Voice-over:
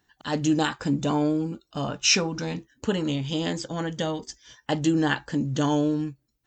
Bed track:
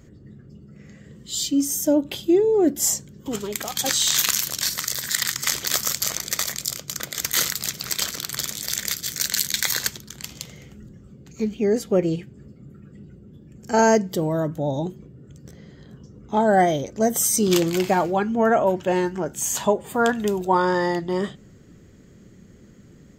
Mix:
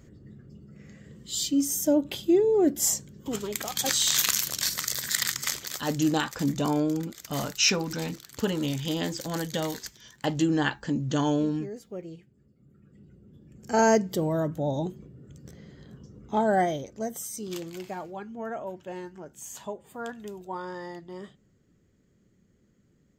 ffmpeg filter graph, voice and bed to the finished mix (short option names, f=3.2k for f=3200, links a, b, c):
-filter_complex "[0:a]adelay=5550,volume=-2dB[a];[1:a]volume=11.5dB,afade=t=out:st=5.3:d=0.53:silence=0.177828,afade=t=in:st=12.51:d=1.44:silence=0.177828,afade=t=out:st=16.19:d=1.06:silence=0.223872[b];[a][b]amix=inputs=2:normalize=0"